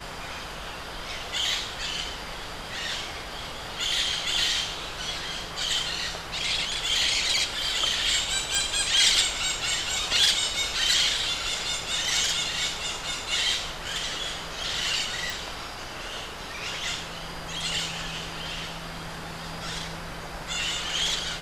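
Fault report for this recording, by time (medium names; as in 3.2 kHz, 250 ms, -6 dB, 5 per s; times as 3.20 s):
8.55 s: pop
15.30 s: pop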